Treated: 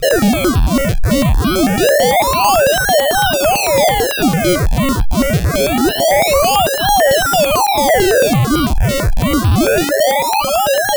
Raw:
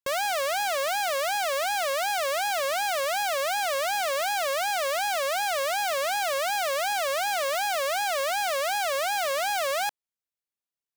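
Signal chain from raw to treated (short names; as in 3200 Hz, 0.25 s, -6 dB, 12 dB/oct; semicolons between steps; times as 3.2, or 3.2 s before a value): high shelf 12000 Hz -9 dB; notch 2200 Hz, Q 17; on a send: band-limited delay 0.259 s, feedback 63%, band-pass 680 Hz, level -16 dB; on the sum: loudest bins only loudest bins 1; upward compressor, threshold -39 dBFS; graphic EQ 125/250/500/1000/2000/4000/8000 Hz -5/-6/+10/+8/+7/+9/+8 dB; in parallel at +1 dB: compressor 4:1, threshold -38 dBFS, peak gain reduction 13 dB; on the sum: decimation with a swept rate 36×, swing 100% 0.25 Hz; soft clip -32 dBFS, distortion -9 dB; maximiser +35.5 dB; step phaser 9 Hz 260–2000 Hz; gain -7.5 dB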